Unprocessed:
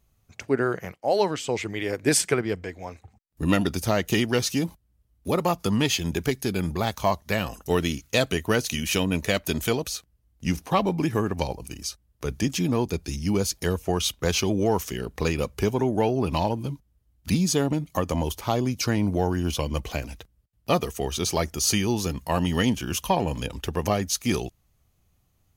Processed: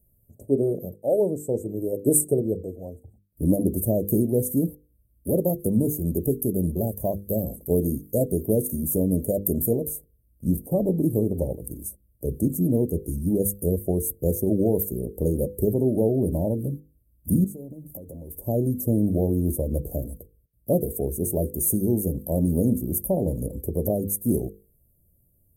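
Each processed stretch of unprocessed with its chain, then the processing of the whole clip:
17.44–18.46 G.711 law mismatch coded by mu + compressor, threshold -38 dBFS
whole clip: Chebyshev band-stop 590–8600 Hz, order 4; bell 13000 Hz +10.5 dB 0.36 oct; notches 50/100/150/200/250/300/350/400/450/500 Hz; gain +3.5 dB

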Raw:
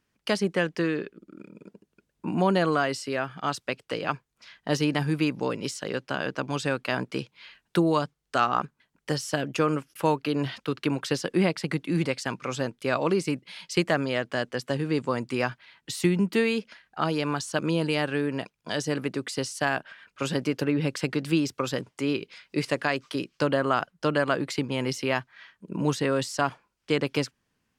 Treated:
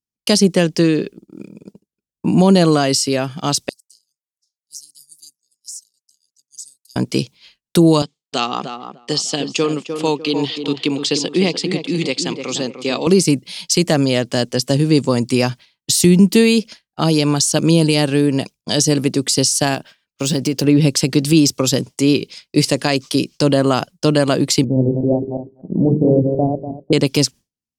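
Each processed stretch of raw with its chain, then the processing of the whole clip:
3.69–6.96 inverse Chebyshev high-pass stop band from 2500 Hz, stop band 50 dB + compressor 12:1, threshold -46 dBFS
8.02–13.07 speaker cabinet 290–6900 Hz, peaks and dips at 320 Hz -4 dB, 600 Hz -9 dB, 930 Hz -3 dB, 1500 Hz -7 dB, 3300 Hz +4 dB, 5700 Hz -8 dB + tape echo 0.302 s, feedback 39%, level -6 dB, low-pass 1500 Hz
19.74–20.64 median filter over 3 samples + compressor 2:1, threshold -29 dBFS
24.64–26.93 regenerating reverse delay 0.122 s, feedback 44%, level -4 dB + steep low-pass 730 Hz 48 dB/oct + notches 50/100/150/200/250/300/350/400/450 Hz
whole clip: EQ curve 230 Hz 0 dB, 810 Hz -7 dB, 1500 Hz -14 dB, 5500 Hz +6 dB; expander -42 dBFS; maximiser +15.5 dB; gain -1 dB

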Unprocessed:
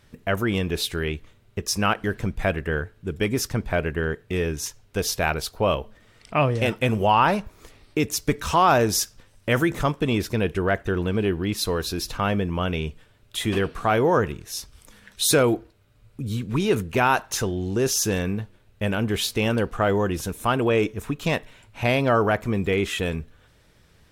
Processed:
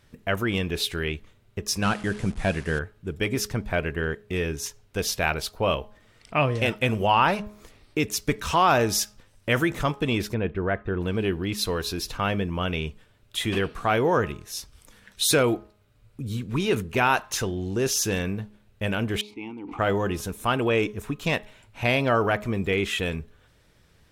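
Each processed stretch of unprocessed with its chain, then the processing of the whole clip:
1.82–2.79 delta modulation 64 kbps, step -36 dBFS + bell 190 Hz +4.5 dB 0.85 oct + careless resampling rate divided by 2×, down none, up filtered
10.34–11.01 air absorption 420 m + notch 2900 Hz, Q 20
19.21–19.79 vowel filter u + sustainer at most 23 dB/s
whole clip: de-hum 209 Hz, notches 6; dynamic EQ 2700 Hz, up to +4 dB, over -36 dBFS, Q 0.93; gain -2.5 dB

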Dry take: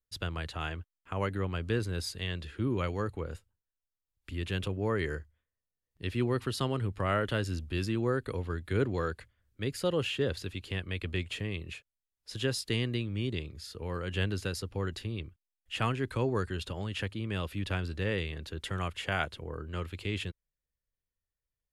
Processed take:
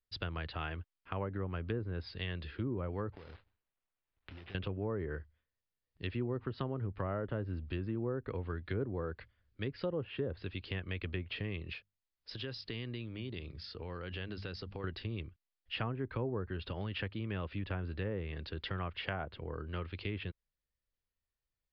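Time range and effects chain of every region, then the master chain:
3.12–4.55 block floating point 3-bit + compressor 16:1, threshold -45 dBFS + careless resampling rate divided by 8×, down none, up hold
11.75–14.84 notches 50/100/150/200 Hz + compressor 3:1, threshold -38 dBFS
whole clip: treble ducked by the level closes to 930 Hz, closed at -26.5 dBFS; elliptic low-pass 4900 Hz; compressor 2:1, threshold -36 dBFS

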